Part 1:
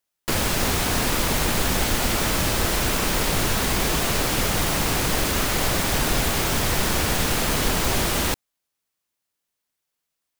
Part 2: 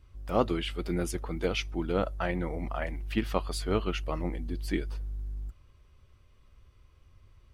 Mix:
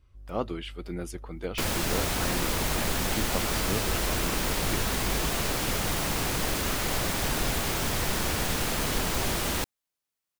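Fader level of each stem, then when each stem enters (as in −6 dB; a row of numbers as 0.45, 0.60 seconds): −6.0, −4.5 decibels; 1.30, 0.00 seconds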